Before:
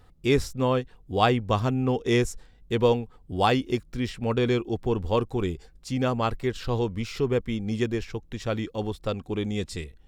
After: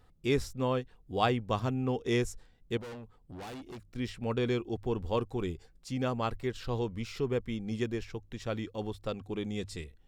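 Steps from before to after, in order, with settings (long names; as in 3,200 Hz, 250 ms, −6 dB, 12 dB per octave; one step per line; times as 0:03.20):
mains-hum notches 50/100 Hz
0:02.77–0:03.96: tube saturation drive 35 dB, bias 0.35
level −6.5 dB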